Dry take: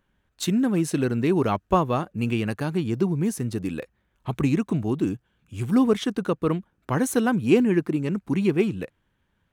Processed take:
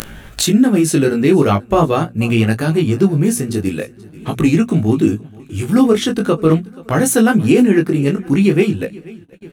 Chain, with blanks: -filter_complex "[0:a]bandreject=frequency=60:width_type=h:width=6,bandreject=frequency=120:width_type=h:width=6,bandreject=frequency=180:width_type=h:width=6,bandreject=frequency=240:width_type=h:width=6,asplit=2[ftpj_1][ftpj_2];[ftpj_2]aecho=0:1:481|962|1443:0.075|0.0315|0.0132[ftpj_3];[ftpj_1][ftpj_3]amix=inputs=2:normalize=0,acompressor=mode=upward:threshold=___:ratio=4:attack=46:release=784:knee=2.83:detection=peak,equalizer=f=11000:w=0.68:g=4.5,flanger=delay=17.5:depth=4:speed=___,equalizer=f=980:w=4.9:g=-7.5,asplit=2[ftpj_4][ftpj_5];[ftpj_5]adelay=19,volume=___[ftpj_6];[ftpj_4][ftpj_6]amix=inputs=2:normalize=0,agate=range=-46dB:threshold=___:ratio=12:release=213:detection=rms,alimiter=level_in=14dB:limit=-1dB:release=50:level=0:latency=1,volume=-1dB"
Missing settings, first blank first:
-34dB, 0.43, -12dB, -48dB